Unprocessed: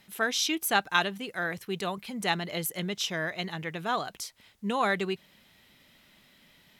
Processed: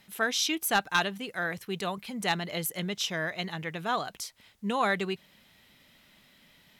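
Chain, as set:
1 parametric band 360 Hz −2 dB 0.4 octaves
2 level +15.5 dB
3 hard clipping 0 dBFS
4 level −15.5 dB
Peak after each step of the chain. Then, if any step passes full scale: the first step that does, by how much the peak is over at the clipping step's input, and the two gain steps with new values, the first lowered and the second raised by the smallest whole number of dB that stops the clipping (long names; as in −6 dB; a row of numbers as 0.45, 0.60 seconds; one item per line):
−9.0, +6.5, 0.0, −15.5 dBFS
step 2, 6.5 dB
step 2 +8.5 dB, step 4 −8.5 dB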